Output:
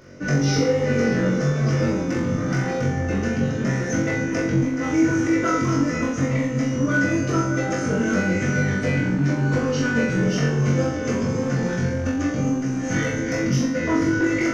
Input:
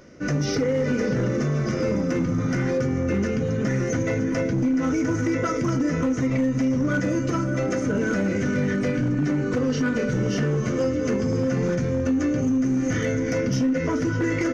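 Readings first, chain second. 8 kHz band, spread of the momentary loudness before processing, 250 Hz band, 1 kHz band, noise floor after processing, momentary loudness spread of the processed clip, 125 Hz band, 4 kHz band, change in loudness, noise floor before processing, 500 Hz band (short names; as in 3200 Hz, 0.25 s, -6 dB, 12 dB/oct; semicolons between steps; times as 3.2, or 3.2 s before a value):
n/a, 2 LU, +1.0 dB, +4.5 dB, -26 dBFS, 4 LU, +3.0 dB, +4.0 dB, +1.5 dB, -26 dBFS, +0.5 dB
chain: flutter echo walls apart 3.7 m, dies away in 0.61 s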